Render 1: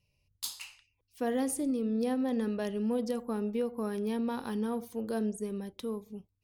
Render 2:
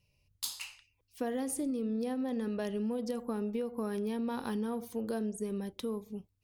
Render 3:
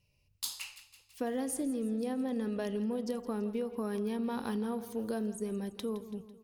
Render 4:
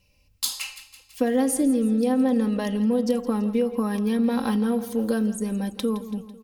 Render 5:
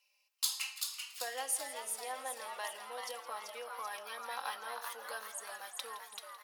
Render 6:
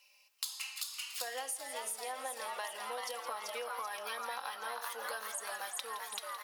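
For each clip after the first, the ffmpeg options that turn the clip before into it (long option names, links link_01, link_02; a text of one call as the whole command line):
ffmpeg -i in.wav -af "acompressor=threshold=-33dB:ratio=6,volume=2dB" out.wav
ffmpeg -i in.wav -af "aecho=1:1:166|332|498|664|830|996:0.168|0.0974|0.0565|0.0328|0.019|0.011" out.wav
ffmpeg -i in.wav -af "aecho=1:1:3.8:0.67,volume=9dB" out.wav
ffmpeg -i in.wav -filter_complex "[0:a]highpass=frequency=770:width=0.5412,highpass=frequency=770:width=1.3066,asplit=2[link_01][link_02];[link_02]asplit=7[link_03][link_04][link_05][link_06][link_07][link_08][link_09];[link_03]adelay=386,afreqshift=130,volume=-5dB[link_10];[link_04]adelay=772,afreqshift=260,volume=-10.4dB[link_11];[link_05]adelay=1158,afreqshift=390,volume=-15.7dB[link_12];[link_06]adelay=1544,afreqshift=520,volume=-21.1dB[link_13];[link_07]adelay=1930,afreqshift=650,volume=-26.4dB[link_14];[link_08]adelay=2316,afreqshift=780,volume=-31.8dB[link_15];[link_09]adelay=2702,afreqshift=910,volume=-37.1dB[link_16];[link_10][link_11][link_12][link_13][link_14][link_15][link_16]amix=inputs=7:normalize=0[link_17];[link_01][link_17]amix=inputs=2:normalize=0,volume=-6.5dB" out.wav
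ffmpeg -i in.wav -af "acompressor=threshold=-46dB:ratio=12,volume=9.5dB" out.wav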